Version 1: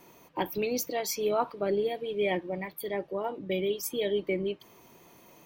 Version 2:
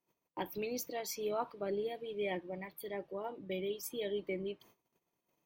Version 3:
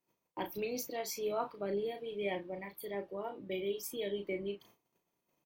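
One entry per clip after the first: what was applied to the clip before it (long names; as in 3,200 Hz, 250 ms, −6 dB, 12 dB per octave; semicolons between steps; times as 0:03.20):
noise gate −52 dBFS, range −25 dB; level −8.5 dB
double-tracking delay 35 ms −6.5 dB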